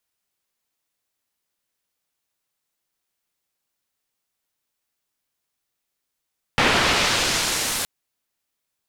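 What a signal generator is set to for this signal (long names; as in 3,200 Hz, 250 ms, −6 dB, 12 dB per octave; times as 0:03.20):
filter sweep on noise white, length 1.27 s lowpass, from 2,300 Hz, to 12,000 Hz, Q 0.75, exponential, gain ramp −15 dB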